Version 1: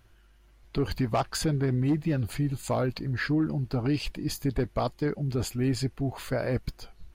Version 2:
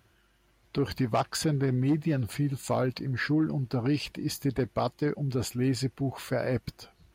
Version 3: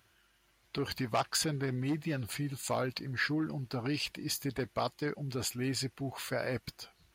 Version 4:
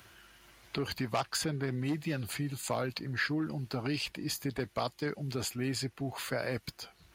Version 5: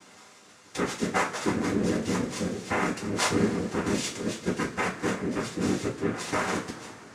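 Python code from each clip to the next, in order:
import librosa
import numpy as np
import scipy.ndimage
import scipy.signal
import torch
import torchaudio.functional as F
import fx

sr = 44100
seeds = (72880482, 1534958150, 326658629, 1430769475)

y1 = scipy.signal.sosfilt(scipy.signal.butter(2, 93.0, 'highpass', fs=sr, output='sos'), x)
y2 = fx.tilt_shelf(y1, sr, db=-5.0, hz=850.0)
y2 = y2 * 10.0 ** (-3.5 / 20.0)
y3 = fx.band_squash(y2, sr, depth_pct=40)
y4 = fx.brickwall_lowpass(y3, sr, high_hz=3900.0)
y4 = fx.noise_vocoder(y4, sr, seeds[0], bands=3)
y4 = fx.rev_double_slope(y4, sr, seeds[1], early_s=0.25, late_s=3.4, knee_db=-22, drr_db=-6.0)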